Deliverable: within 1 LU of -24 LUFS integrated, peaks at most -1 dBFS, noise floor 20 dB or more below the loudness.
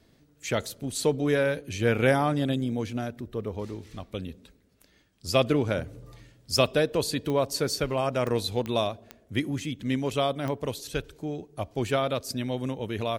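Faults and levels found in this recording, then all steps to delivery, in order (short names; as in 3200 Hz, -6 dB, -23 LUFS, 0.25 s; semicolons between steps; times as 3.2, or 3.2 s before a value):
clicks 5; loudness -28.0 LUFS; peak -6.0 dBFS; loudness target -24.0 LUFS
-> de-click; gain +4 dB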